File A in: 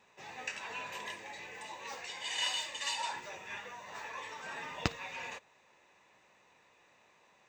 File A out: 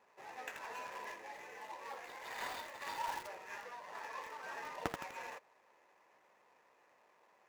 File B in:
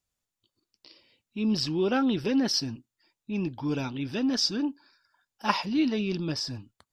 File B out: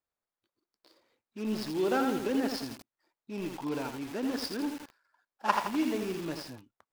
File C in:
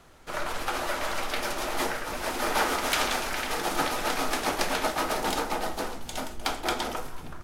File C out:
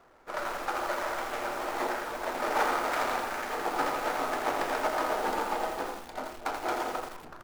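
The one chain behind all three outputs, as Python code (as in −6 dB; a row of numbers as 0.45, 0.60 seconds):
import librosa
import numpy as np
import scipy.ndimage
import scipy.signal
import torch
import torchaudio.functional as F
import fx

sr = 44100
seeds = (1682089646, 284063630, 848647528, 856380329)

y = scipy.signal.medfilt(x, 15)
y = fx.bass_treble(y, sr, bass_db=-14, treble_db=-3)
y = fx.echo_crushed(y, sr, ms=83, feedback_pct=55, bits=7, wet_db=-4.5)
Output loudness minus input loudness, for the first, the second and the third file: −6.0, −4.5, −2.5 LU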